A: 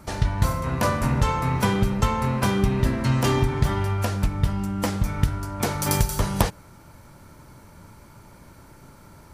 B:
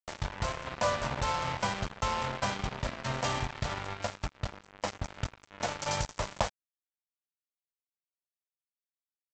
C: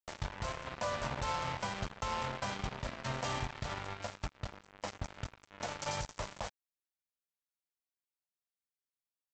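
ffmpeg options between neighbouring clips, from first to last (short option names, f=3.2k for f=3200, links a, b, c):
-af "lowshelf=f=480:t=q:w=3:g=-6.5,aresample=16000,acrusher=bits=3:mix=0:aa=0.5,aresample=44100,volume=-7.5dB"
-af "alimiter=limit=-21.5dB:level=0:latency=1:release=84,volume=-4dB"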